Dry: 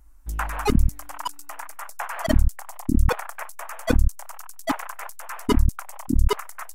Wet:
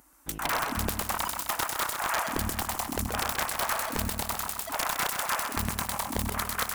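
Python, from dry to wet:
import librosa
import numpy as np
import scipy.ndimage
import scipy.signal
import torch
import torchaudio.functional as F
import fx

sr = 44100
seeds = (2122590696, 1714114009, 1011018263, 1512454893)

y = scipy.signal.sosfilt(scipy.signal.butter(2, 210.0, 'highpass', fs=sr, output='sos'), x)
y = fx.high_shelf(y, sr, hz=8200.0, db=3.5)
y = fx.over_compress(y, sr, threshold_db=-34.0, ratio=-1.0)
y = (np.mod(10.0 ** (22.5 / 20.0) * y + 1.0, 2.0) - 1.0) / 10.0 ** (22.5 / 20.0)
y = fx.echo_feedback(y, sr, ms=129, feedback_pct=60, wet_db=-6.0)
y = y * 10.0 ** (3.0 / 20.0)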